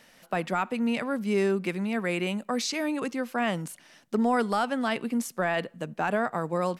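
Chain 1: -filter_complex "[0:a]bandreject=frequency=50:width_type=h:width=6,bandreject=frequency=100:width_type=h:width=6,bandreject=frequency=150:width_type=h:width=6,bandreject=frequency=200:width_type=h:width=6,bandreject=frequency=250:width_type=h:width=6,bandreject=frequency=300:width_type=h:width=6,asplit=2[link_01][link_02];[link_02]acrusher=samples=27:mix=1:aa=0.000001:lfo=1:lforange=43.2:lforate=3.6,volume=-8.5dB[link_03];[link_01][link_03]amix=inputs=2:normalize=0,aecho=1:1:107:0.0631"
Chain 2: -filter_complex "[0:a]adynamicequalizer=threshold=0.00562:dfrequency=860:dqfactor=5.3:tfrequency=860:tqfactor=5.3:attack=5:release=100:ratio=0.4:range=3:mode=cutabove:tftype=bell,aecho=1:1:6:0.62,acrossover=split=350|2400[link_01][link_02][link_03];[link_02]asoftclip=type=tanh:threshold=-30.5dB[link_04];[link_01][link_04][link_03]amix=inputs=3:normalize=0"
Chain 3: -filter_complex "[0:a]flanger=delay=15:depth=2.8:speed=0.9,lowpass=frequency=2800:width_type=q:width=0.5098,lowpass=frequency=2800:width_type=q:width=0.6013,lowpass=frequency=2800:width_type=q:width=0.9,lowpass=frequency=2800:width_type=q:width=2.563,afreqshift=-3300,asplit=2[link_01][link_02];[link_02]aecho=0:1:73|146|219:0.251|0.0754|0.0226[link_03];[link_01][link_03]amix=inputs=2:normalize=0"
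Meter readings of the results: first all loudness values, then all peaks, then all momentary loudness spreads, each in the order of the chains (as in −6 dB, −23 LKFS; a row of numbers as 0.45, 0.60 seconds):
−27.0, −30.0, −28.5 LKFS; −12.0, −17.0, −16.5 dBFS; 7, 6, 5 LU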